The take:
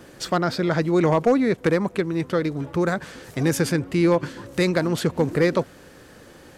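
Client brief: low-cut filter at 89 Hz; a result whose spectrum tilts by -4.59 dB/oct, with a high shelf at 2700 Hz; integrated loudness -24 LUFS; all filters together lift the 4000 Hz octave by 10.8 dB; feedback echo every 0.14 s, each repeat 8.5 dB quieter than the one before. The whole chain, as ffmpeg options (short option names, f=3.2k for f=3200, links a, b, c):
-af "highpass=89,highshelf=f=2.7k:g=4.5,equalizer=f=4k:t=o:g=9,aecho=1:1:140|280|420|560:0.376|0.143|0.0543|0.0206,volume=-3.5dB"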